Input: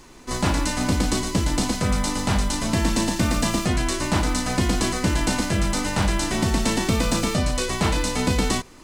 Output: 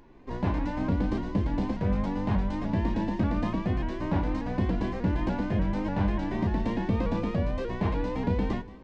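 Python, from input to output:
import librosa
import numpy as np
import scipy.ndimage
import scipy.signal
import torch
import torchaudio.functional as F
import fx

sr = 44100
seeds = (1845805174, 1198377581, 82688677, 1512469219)

y = fx.spacing_loss(x, sr, db_at_10k=45)
y = fx.notch(y, sr, hz=1300.0, q=5.4)
y = fx.comb_fb(y, sr, f0_hz=99.0, decay_s=0.17, harmonics='all', damping=0.0, mix_pct=60)
y = fx.echo_feedback(y, sr, ms=175, feedback_pct=51, wet_db=-18.5)
y = fx.vibrato_shape(y, sr, shape='saw_up', rate_hz=3.4, depth_cents=100.0)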